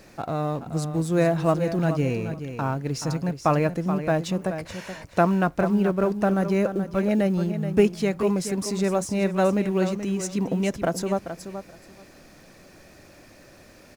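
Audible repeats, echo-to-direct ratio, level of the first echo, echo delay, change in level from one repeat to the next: 2, -10.0 dB, -10.0 dB, 428 ms, -16.0 dB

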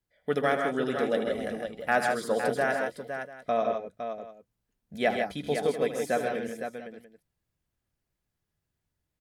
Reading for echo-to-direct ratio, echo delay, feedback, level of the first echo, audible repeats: -2.0 dB, 78 ms, no regular repeats, -11.5 dB, 4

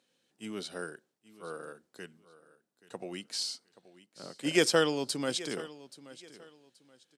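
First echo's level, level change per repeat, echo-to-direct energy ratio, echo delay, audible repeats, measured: -18.0 dB, -11.5 dB, -17.5 dB, 828 ms, 2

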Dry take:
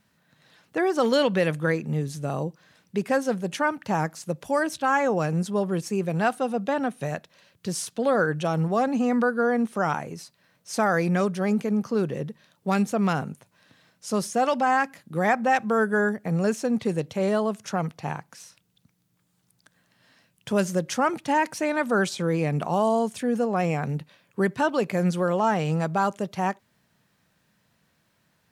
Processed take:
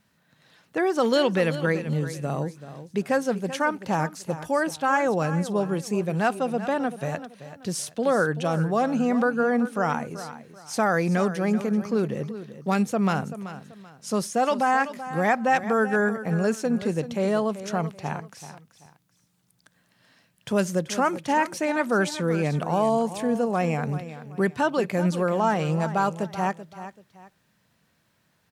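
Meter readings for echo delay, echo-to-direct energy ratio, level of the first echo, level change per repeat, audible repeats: 384 ms, -12.5 dB, -13.0 dB, -10.5 dB, 2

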